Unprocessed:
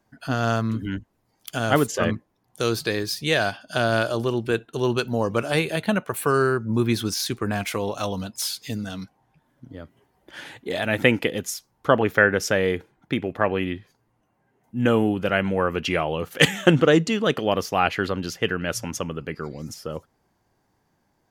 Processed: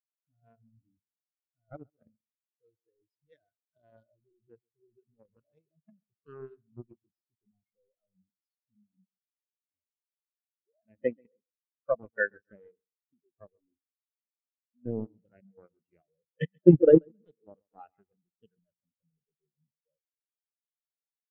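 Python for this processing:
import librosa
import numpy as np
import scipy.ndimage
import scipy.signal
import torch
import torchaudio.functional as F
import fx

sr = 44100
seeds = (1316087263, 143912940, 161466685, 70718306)

p1 = fx.quant_companded(x, sr, bits=2)
p2 = p1 + fx.echo_feedback(p1, sr, ms=134, feedback_pct=50, wet_db=-9.5, dry=0)
p3 = fx.spectral_expand(p2, sr, expansion=4.0)
y = p3 * librosa.db_to_amplitude(-6.0)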